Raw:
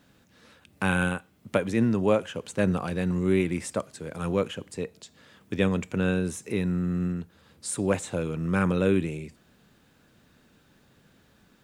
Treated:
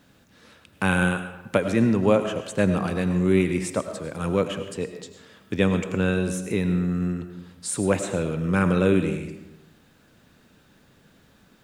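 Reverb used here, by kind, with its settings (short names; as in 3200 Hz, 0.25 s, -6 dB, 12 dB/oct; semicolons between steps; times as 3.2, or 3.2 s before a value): digital reverb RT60 0.92 s, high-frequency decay 0.7×, pre-delay 60 ms, DRR 8 dB; gain +3 dB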